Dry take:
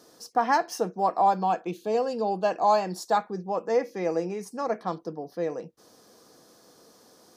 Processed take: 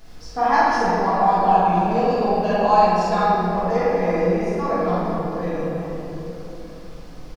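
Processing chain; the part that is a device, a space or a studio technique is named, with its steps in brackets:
low-pass filter 5,500 Hz 12 dB per octave
car interior (parametric band 160 Hz +8 dB 0.75 octaves; high-shelf EQ 4,100 Hz −8 dB; brown noise bed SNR 18 dB)
tilt shelving filter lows −5 dB, about 1,200 Hz
double-tracking delay 46 ms −5.5 dB
rectangular room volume 200 cubic metres, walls hard, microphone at 1.5 metres
level −2.5 dB

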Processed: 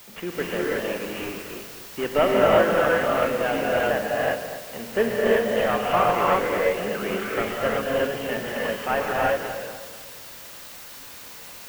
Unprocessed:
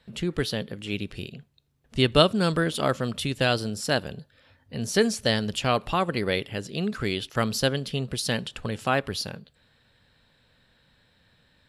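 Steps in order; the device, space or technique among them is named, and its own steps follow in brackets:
army field radio (band-pass filter 380–3,000 Hz; variable-slope delta modulation 16 kbit/s; white noise bed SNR 15 dB)
parametric band 9,900 Hz −5 dB 1.1 octaves
feedback echo with a low-pass in the loop 248 ms, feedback 40%, level −11 dB
reverb whose tail is shaped and stops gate 390 ms rising, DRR −5 dB
level +3 dB

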